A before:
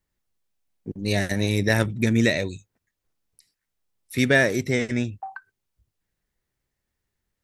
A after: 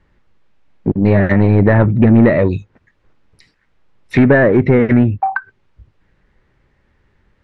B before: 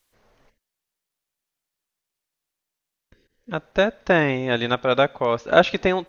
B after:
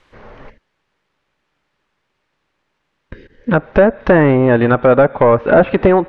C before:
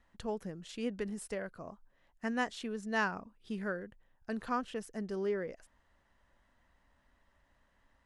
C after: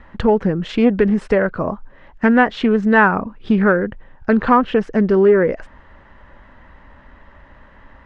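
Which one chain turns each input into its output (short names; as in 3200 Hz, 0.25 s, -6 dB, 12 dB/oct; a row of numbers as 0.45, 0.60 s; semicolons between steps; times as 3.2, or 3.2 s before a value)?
compressor 1.5:1, threshold -41 dBFS; notch 700 Hz, Q 12; soft clip -26 dBFS; treble ducked by the level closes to 1400 Hz, closed at -30 dBFS; LPF 2200 Hz 12 dB/oct; Doppler distortion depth 0.12 ms; normalise peaks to -2 dBFS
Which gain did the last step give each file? +23.5, +23.0, +26.5 dB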